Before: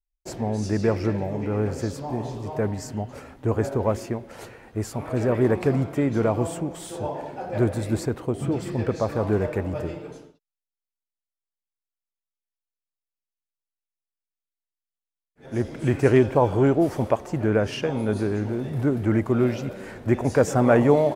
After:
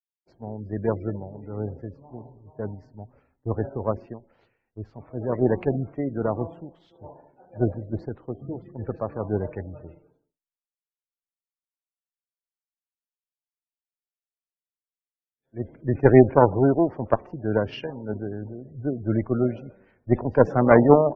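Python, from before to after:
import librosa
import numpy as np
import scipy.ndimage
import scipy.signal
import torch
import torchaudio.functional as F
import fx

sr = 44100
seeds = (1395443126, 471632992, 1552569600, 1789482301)

p1 = fx.cheby_harmonics(x, sr, harmonics=(2, 4, 7), levels_db=(-8, -40, -42), full_scale_db=-5.0)
p2 = fx.backlash(p1, sr, play_db=-26.0)
p3 = p1 + (p2 * 10.0 ** (-8.0 / 20.0))
p4 = fx.spec_gate(p3, sr, threshold_db=-25, keep='strong')
p5 = scipy.signal.sosfilt(scipy.signal.bessel(8, 2600.0, 'lowpass', norm='mag', fs=sr, output='sos'), p4)
p6 = fx.band_widen(p5, sr, depth_pct=100)
y = p6 * 10.0 ** (-6.5 / 20.0)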